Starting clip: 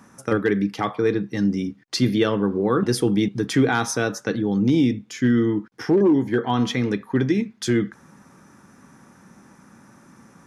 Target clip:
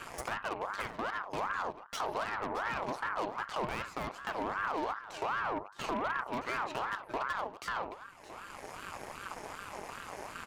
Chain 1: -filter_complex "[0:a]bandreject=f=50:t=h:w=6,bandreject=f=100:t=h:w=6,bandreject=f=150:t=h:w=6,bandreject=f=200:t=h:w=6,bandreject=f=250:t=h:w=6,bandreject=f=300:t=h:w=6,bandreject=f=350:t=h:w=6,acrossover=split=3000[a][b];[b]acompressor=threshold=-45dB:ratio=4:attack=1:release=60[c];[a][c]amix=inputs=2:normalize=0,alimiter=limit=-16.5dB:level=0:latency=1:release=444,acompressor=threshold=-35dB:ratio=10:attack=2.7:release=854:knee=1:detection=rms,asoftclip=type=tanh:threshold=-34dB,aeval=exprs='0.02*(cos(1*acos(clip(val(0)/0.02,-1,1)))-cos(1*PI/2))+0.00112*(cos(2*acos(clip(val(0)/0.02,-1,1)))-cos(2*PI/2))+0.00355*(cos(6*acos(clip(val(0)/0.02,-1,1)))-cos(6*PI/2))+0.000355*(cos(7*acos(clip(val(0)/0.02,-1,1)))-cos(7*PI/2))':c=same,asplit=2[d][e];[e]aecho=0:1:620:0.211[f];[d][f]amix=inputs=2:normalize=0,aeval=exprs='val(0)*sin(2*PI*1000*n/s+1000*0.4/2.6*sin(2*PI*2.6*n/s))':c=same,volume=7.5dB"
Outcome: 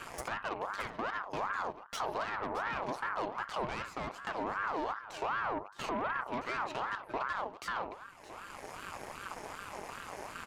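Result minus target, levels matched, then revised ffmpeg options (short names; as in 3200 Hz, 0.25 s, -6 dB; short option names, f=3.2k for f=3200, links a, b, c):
soft clip: distortion +21 dB
-filter_complex "[0:a]bandreject=f=50:t=h:w=6,bandreject=f=100:t=h:w=6,bandreject=f=150:t=h:w=6,bandreject=f=200:t=h:w=6,bandreject=f=250:t=h:w=6,bandreject=f=300:t=h:w=6,bandreject=f=350:t=h:w=6,acrossover=split=3000[a][b];[b]acompressor=threshold=-45dB:ratio=4:attack=1:release=60[c];[a][c]amix=inputs=2:normalize=0,alimiter=limit=-16.5dB:level=0:latency=1:release=444,acompressor=threshold=-35dB:ratio=10:attack=2.7:release=854:knee=1:detection=rms,asoftclip=type=tanh:threshold=-22dB,aeval=exprs='0.02*(cos(1*acos(clip(val(0)/0.02,-1,1)))-cos(1*PI/2))+0.00112*(cos(2*acos(clip(val(0)/0.02,-1,1)))-cos(2*PI/2))+0.00355*(cos(6*acos(clip(val(0)/0.02,-1,1)))-cos(6*PI/2))+0.000355*(cos(7*acos(clip(val(0)/0.02,-1,1)))-cos(7*PI/2))':c=same,asplit=2[d][e];[e]aecho=0:1:620:0.211[f];[d][f]amix=inputs=2:normalize=0,aeval=exprs='val(0)*sin(2*PI*1000*n/s+1000*0.4/2.6*sin(2*PI*2.6*n/s))':c=same,volume=7.5dB"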